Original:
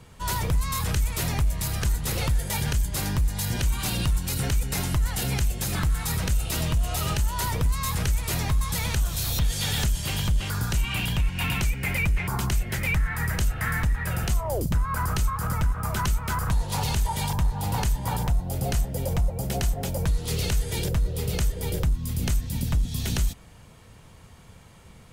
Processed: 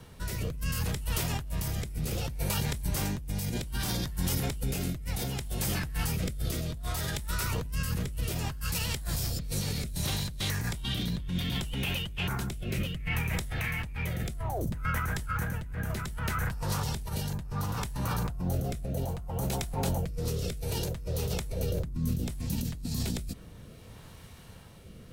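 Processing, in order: compressor with a negative ratio -29 dBFS, ratio -1; rotary cabinet horn 0.65 Hz; formant shift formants +4 st; trim -1.5 dB

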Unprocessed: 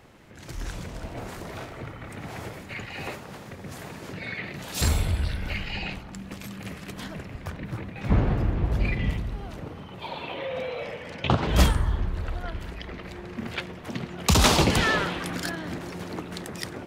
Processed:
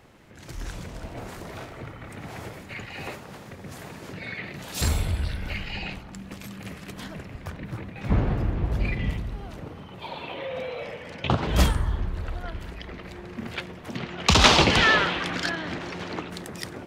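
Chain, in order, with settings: 13.97–16.30 s: FFT filter 180 Hz 0 dB, 3.1 kHz +8 dB, 6.2 kHz +2 dB, 12 kHz -13 dB; trim -1 dB

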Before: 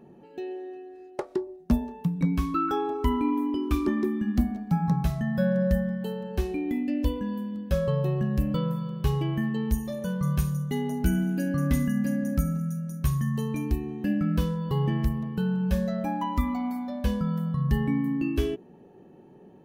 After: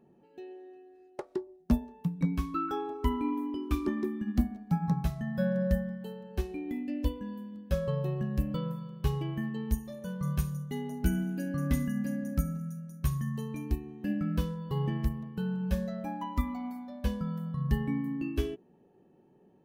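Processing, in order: upward expansion 1.5:1, over -35 dBFS; trim -2 dB

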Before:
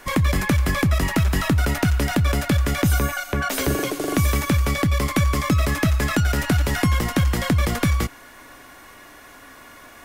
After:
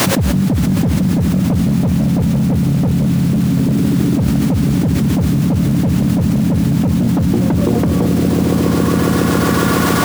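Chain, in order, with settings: low-pass sweep 200 Hz -> 1.3 kHz, 6.87–8.97 s; added noise pink -41 dBFS; high-pass 110 Hz 24 dB/octave; on a send: echo with a slow build-up 138 ms, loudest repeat 5, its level -13 dB; on the sum: overload inside the chain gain 16 dB; level flattener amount 100%; trim +3.5 dB

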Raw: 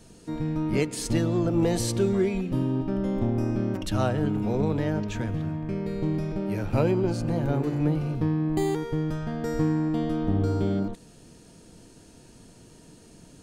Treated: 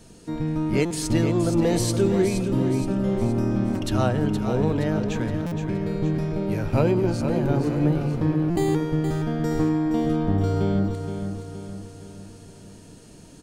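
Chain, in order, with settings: feedback delay 470 ms, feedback 49%, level -8 dB; buffer glitch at 0.85/5.46/8.50 s, samples 256, times 9; trim +2.5 dB

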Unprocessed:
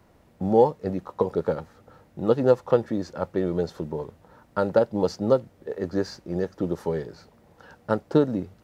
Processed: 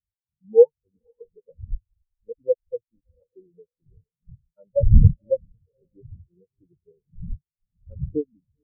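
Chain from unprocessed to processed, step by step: wind noise 150 Hz -25 dBFS; on a send: echo that smears into a reverb 490 ms, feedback 42%, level -10 dB; 1.60–3.06 s: on the sum: hysteresis with a dead band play -19 dBFS; spectral contrast expander 4:1; trim +1.5 dB

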